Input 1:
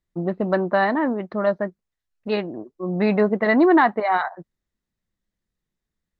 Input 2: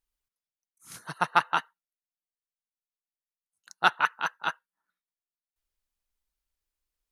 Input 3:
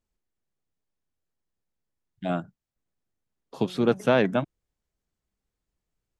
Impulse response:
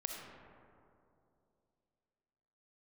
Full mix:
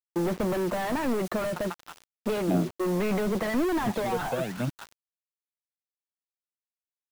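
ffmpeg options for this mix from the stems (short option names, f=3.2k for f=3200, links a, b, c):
-filter_complex "[0:a]asplit=2[a][b];[b]highpass=f=720:p=1,volume=35dB,asoftclip=type=tanh:threshold=-5dB[c];[a][c]amix=inputs=2:normalize=0,lowpass=f=1.7k:p=1,volume=-6dB,volume=-11dB,asplit=2[d][e];[1:a]acompressor=threshold=-26dB:ratio=4,adelay=350,volume=-5dB,asplit=2[f][g];[g]volume=-10dB[h];[2:a]aphaser=in_gain=1:out_gain=1:delay=2.1:decay=0.77:speed=0.88:type=sinusoidal,adelay=250,volume=-7dB[i];[e]apad=whole_len=329024[j];[f][j]sidechaingate=range=-24dB:threshold=-29dB:ratio=16:detection=peak[k];[3:a]atrim=start_sample=2205[l];[h][l]afir=irnorm=-1:irlink=0[m];[d][k][i][m]amix=inputs=4:normalize=0,acrossover=split=290[n][o];[o]acompressor=threshold=-28dB:ratio=10[p];[n][p]amix=inputs=2:normalize=0,acrusher=bits=6:mix=0:aa=0.000001"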